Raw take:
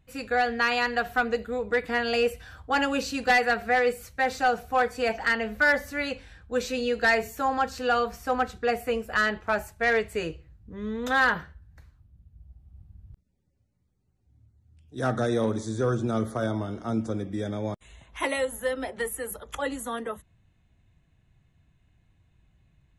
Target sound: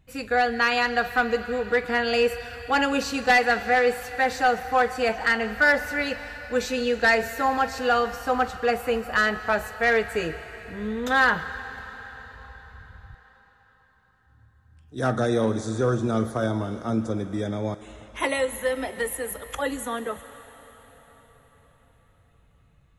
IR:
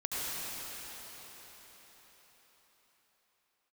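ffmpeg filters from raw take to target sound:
-filter_complex "[0:a]asplit=2[link_01][link_02];[1:a]atrim=start_sample=2205,lowshelf=frequency=420:gain=-9.5,adelay=45[link_03];[link_02][link_03]afir=irnorm=-1:irlink=0,volume=-17.5dB[link_04];[link_01][link_04]amix=inputs=2:normalize=0,volume=2.5dB"

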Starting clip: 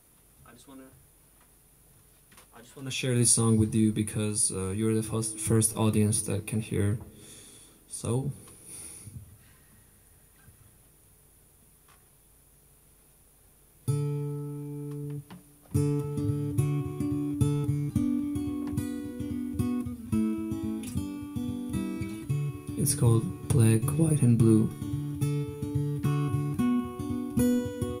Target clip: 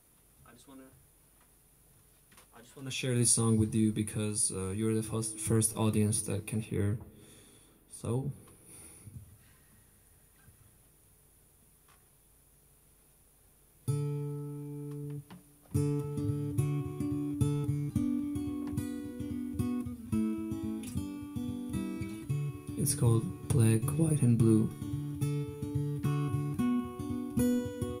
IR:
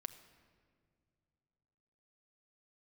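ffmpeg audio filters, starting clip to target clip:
-filter_complex "[0:a]asettb=1/sr,asplit=3[link_01][link_02][link_03];[link_01]atrim=end=6.654[link_04];[link_02]atrim=start=6.65:end=9.14,asetpts=PTS-STARTPTS,afade=type=in:duration=0.004:curve=qsin,afade=type=out:start_time=2.486:duration=0.004:curve=qsin,equalizer=frequency=6400:width_type=o:width=1.7:gain=-8.5[link_05];[link_03]atrim=start=9.136[link_06];[link_04][link_05]acrossfade=duration=0.004:curve1=hsin:curve2=qsin[link_07];[link_07][link_06]acrossfade=duration=0.004:curve1=qsin:curve2=hsin,volume=-4dB"

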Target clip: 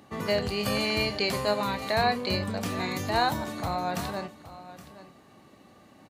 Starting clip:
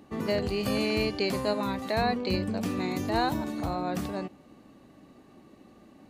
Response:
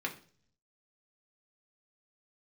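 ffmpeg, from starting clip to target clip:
-filter_complex "[0:a]highpass=82,equalizer=frequency=290:width=0.87:gain=-9,bandreject=frequency=2600:width=29,asplit=2[link_01][link_02];[link_02]adelay=29,volume=-12.5dB[link_03];[link_01][link_03]amix=inputs=2:normalize=0,aecho=1:1:819:0.168,volume=4.5dB"

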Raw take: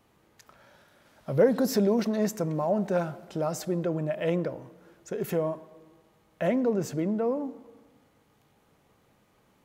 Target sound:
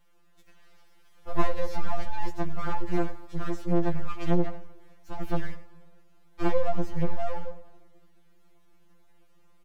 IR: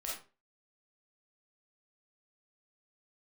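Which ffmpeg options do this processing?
-filter_complex "[0:a]asubboost=boost=3:cutoff=240,acrossover=split=3800[link_01][link_02];[link_02]acompressor=threshold=-56dB:ratio=4:attack=1:release=60[link_03];[link_01][link_03]amix=inputs=2:normalize=0,aeval=exprs='abs(val(0))':channel_layout=same,asplit=2[link_04][link_05];[link_05]adelay=93.29,volume=-18dB,highshelf=frequency=4000:gain=-2.1[link_06];[link_04][link_06]amix=inputs=2:normalize=0,afftfilt=real='re*2.83*eq(mod(b,8),0)':imag='im*2.83*eq(mod(b,8),0)':win_size=2048:overlap=0.75"

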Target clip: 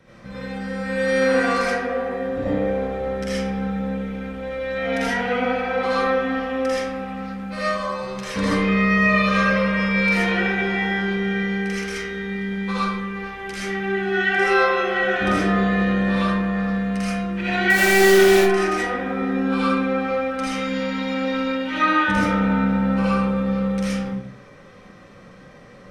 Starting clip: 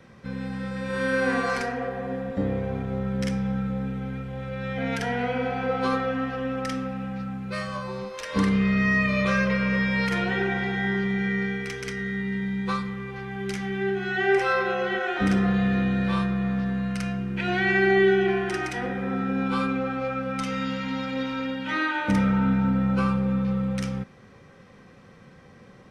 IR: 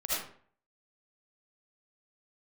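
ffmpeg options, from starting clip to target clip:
-filter_complex "[0:a]bandreject=frequency=130.2:width_type=h:width=4,bandreject=frequency=260.4:width_type=h:width=4,bandreject=frequency=390.6:width_type=h:width=4,bandreject=frequency=520.8:width_type=h:width=4,bandreject=frequency=651:width_type=h:width=4,bandreject=frequency=781.2:width_type=h:width=4,bandreject=frequency=911.4:width_type=h:width=4,bandreject=frequency=1041.6:width_type=h:width=4,bandreject=frequency=1171.8:width_type=h:width=4,bandreject=frequency=1302:width_type=h:width=4,bandreject=frequency=1432.2:width_type=h:width=4,bandreject=frequency=1562.4:width_type=h:width=4,bandreject=frequency=1692.6:width_type=h:width=4,bandreject=frequency=1822.8:width_type=h:width=4,bandreject=frequency=1953:width_type=h:width=4,bandreject=frequency=2083.2:width_type=h:width=4,bandreject=frequency=2213.4:width_type=h:width=4,bandreject=frequency=2343.6:width_type=h:width=4,bandreject=frequency=2473.8:width_type=h:width=4,bandreject=frequency=2604:width_type=h:width=4,bandreject=frequency=2734.2:width_type=h:width=4,bandreject=frequency=2864.4:width_type=h:width=4,bandreject=frequency=2994.6:width_type=h:width=4,bandreject=frequency=3124.8:width_type=h:width=4,bandreject=frequency=3255:width_type=h:width=4,bandreject=frequency=3385.2:width_type=h:width=4,bandreject=frequency=3515.4:width_type=h:width=4,bandreject=frequency=3645.6:width_type=h:width=4,bandreject=frequency=3775.8:width_type=h:width=4,asettb=1/sr,asplit=3[link_01][link_02][link_03];[link_01]atrim=end=17.704[link_04];[link_02]atrim=start=17.7:end=18.36,asetpts=PTS-STARTPTS,afade=type=in:duration=0.004:curve=qsin,afade=type=out:start_time=0.656:duration=0.004:curve=qsin,acrusher=bits=5:dc=4:mix=0:aa=0.000001[link_05];[link_03]atrim=start=18.356[link_06];[link_04][link_05]acrossfade=duration=0.004:curve1=hsin:curve2=qsin[link_07];[link_07][link_06]acrossfade=duration=0.004:curve1=qsin:curve2=hsin[link_08];[1:a]atrim=start_sample=2205,asetrate=41895,aresample=44100[link_09];[link_08][link_09]afir=irnorm=-1:irlink=0"

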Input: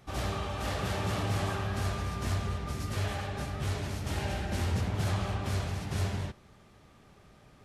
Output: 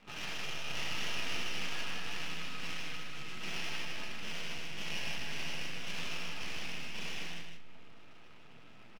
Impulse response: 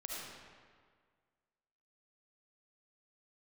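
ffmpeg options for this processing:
-filter_complex "[0:a]equalizer=frequency=70:width=6.6:gain=-4,bandreject=frequency=50:width_type=h:width=6,bandreject=frequency=100:width_type=h:width=6,bandreject=frequency=150:width_type=h:width=6,bandreject=frequency=200:width_type=h:width=6,acrossover=split=1600[link_01][link_02];[link_01]acompressor=threshold=-48dB:ratio=4[link_03];[link_03][link_02]amix=inputs=2:normalize=0,lowpass=frequency=2700:width_type=q:width=3.8,flanger=delay=22.5:depth=6:speed=0.94,atempo=0.85,afreqshift=75,aeval=exprs='max(val(0),0)':channel_layout=same,aecho=1:1:110.8|154.5:0.282|0.562,asplit=2[link_04][link_05];[1:a]atrim=start_sample=2205[link_06];[link_05][link_06]afir=irnorm=-1:irlink=0,volume=-17dB[link_07];[link_04][link_07]amix=inputs=2:normalize=0,volume=3dB"

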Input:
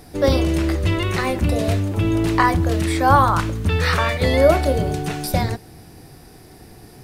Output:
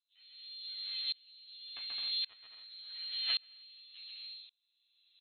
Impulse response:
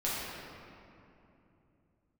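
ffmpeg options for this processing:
-filter_complex "[0:a]equalizer=frequency=150:width_type=o:width=0.24:gain=-2.5,bandreject=frequency=222:width_type=h:width=4,bandreject=frequency=444:width_type=h:width=4,bandreject=frequency=666:width_type=h:width=4,bandreject=frequency=888:width_type=h:width=4,bandreject=frequency=1110:width_type=h:width=4,bandreject=frequency=1332:width_type=h:width=4,bandreject=frequency=1554:width_type=h:width=4,bandreject=frequency=1776:width_type=h:width=4,bandreject=frequency=1998:width_type=h:width=4,bandreject=frequency=2220:width_type=h:width=4,bandreject=frequency=2442:width_type=h:width=4,bandreject=frequency=2664:width_type=h:width=4,bandreject=frequency=2886:width_type=h:width=4,bandreject=frequency=3108:width_type=h:width=4,bandreject=frequency=3330:width_type=h:width=4,bandreject=frequency=3552:width_type=h:width=4,bandreject=frequency=3774:width_type=h:width=4,bandreject=frequency=3996:width_type=h:width=4,bandreject=frequency=4218:width_type=h:width=4,bandreject=frequency=4440:width_type=h:width=4,bandreject=frequency=4662:width_type=h:width=4,bandreject=frequency=4884:width_type=h:width=4,bandreject=frequency=5106:width_type=h:width=4,bandreject=frequency=5328:width_type=h:width=4,bandreject=frequency=5550:width_type=h:width=4,bandreject=frequency=5772:width_type=h:width=4,bandreject=frequency=5994:width_type=h:width=4,bandreject=frequency=6216:width_type=h:width=4,bandreject=frequency=6438:width_type=h:width=4,bandreject=frequency=6660:width_type=h:width=4,bandreject=frequency=6882:width_type=h:width=4,bandreject=frequency=7104:width_type=h:width=4,bandreject=frequency=7326:width_type=h:width=4,bandreject=frequency=7548:width_type=h:width=4,bandreject=frequency=7770:width_type=h:width=4,areverse,acompressor=mode=upward:threshold=-28dB:ratio=2.5,areverse,aeval=exprs='val(0)+0.00501*(sin(2*PI*50*n/s)+sin(2*PI*2*50*n/s)/2+sin(2*PI*3*50*n/s)/3+sin(2*PI*4*50*n/s)/4+sin(2*PI*5*50*n/s)/5)':channel_layout=same,aeval=exprs='0.841*(cos(1*acos(clip(val(0)/0.841,-1,1)))-cos(1*PI/2))+0.0075*(cos(2*acos(clip(val(0)/0.841,-1,1)))-cos(2*PI/2))+0.376*(cos(3*acos(clip(val(0)/0.841,-1,1)))-cos(3*PI/2))+0.0473*(cos(8*acos(clip(val(0)/0.841,-1,1)))-cos(8*PI/2))':channel_layout=same,flanger=delay=16:depth=5.7:speed=2,acrossover=split=1100[link_01][link_02];[link_02]acrusher=bits=2:mix=0:aa=0.5[link_03];[link_01][link_03]amix=inputs=2:normalize=0,asetrate=66075,aresample=44100,atempo=0.66742,aecho=1:1:180|288|352.8|391.7|415:0.631|0.398|0.251|0.158|0.1,lowpass=frequency=2600:width_type=q:width=0.5098,lowpass=frequency=2600:width_type=q:width=0.6013,lowpass=frequency=2600:width_type=q:width=0.9,lowpass=frequency=2600:width_type=q:width=2.563,afreqshift=-3100,asetrate=59535,aresample=44100,aeval=exprs='val(0)*pow(10,-31*if(lt(mod(-0.89*n/s,1),2*abs(-0.89)/1000),1-mod(-0.89*n/s,1)/(2*abs(-0.89)/1000),(mod(-0.89*n/s,1)-2*abs(-0.89)/1000)/(1-2*abs(-0.89)/1000))/20)':channel_layout=same,volume=-8.5dB"

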